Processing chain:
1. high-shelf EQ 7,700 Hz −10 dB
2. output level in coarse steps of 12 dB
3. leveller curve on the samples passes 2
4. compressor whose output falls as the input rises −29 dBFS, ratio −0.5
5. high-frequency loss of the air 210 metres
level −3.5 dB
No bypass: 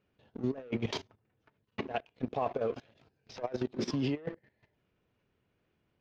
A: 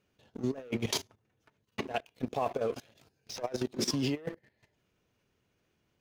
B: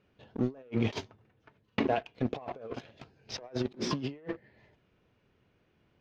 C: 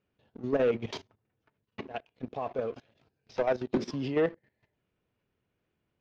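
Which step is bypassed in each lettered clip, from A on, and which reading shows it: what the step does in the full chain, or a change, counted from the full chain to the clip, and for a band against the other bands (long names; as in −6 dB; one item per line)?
5, 4 kHz band +6.0 dB
2, change in crest factor +3.5 dB
4, change in crest factor −2.0 dB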